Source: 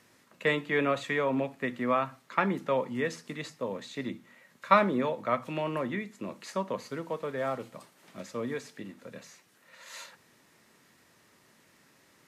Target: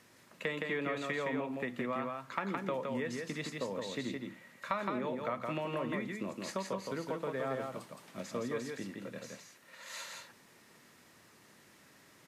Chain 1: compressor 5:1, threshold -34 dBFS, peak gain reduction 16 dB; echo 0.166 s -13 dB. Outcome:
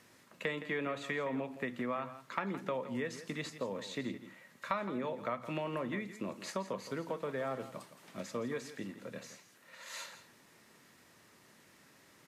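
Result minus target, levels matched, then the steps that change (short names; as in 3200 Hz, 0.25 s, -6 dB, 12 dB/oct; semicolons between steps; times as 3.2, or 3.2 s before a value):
echo-to-direct -9.5 dB
change: echo 0.166 s -3.5 dB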